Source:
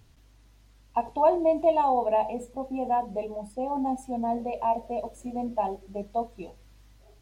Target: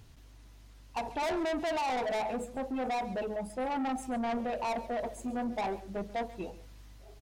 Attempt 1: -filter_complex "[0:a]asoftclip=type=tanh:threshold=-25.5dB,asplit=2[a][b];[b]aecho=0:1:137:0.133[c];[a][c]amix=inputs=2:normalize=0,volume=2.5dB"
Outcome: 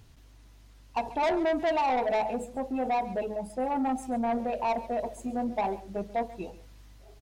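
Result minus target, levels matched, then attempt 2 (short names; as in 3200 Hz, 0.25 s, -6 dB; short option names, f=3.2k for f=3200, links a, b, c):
soft clip: distortion -4 dB
-filter_complex "[0:a]asoftclip=type=tanh:threshold=-32.5dB,asplit=2[a][b];[b]aecho=0:1:137:0.133[c];[a][c]amix=inputs=2:normalize=0,volume=2.5dB"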